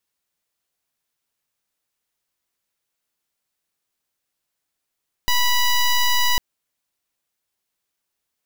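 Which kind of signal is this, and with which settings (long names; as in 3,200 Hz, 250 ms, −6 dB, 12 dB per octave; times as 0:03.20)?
pulse wave 981 Hz, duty 11% −17 dBFS 1.10 s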